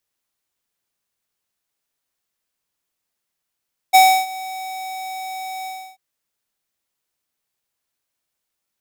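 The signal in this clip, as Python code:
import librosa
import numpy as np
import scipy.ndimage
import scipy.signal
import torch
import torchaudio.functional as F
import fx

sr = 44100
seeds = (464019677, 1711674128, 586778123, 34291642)

y = fx.adsr_tone(sr, wave='square', hz=756.0, attack_ms=21.0, decay_ms=307.0, sustain_db=-21.0, held_s=1.73, release_ms=310.0, level_db=-8.5)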